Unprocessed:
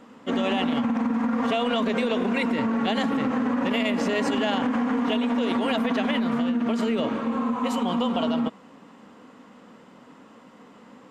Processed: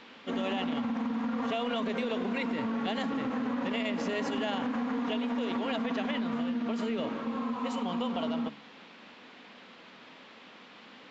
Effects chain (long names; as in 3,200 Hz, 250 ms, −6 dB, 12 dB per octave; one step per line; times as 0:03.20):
hum removal 71.34 Hz, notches 5
noise in a band 260–3,500 Hz −46 dBFS
downsampling to 16,000 Hz
level −7.5 dB